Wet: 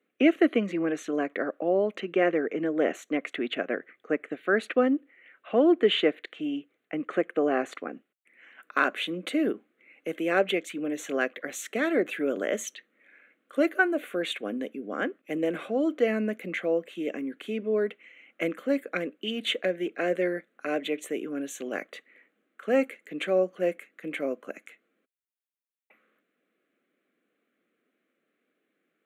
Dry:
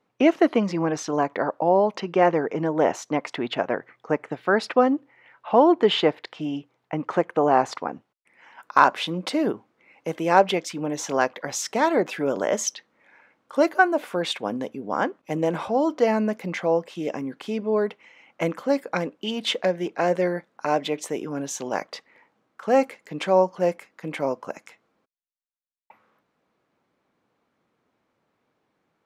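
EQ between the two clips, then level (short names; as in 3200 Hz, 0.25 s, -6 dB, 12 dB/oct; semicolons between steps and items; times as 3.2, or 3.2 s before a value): HPF 230 Hz 24 dB/oct; fixed phaser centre 2200 Hz, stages 4; 0.0 dB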